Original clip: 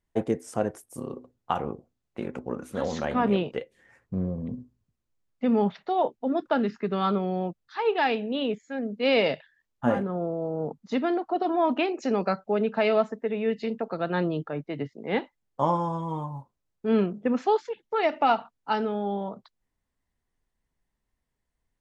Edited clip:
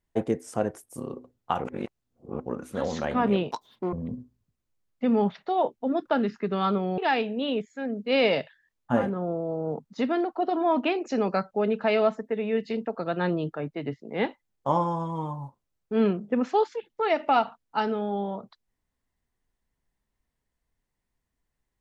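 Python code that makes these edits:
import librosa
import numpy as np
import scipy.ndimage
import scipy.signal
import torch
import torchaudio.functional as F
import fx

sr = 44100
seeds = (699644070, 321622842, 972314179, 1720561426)

y = fx.edit(x, sr, fx.reverse_span(start_s=1.64, length_s=0.76),
    fx.speed_span(start_s=3.51, length_s=0.82, speed=1.96),
    fx.cut(start_s=7.38, length_s=0.53), tone=tone)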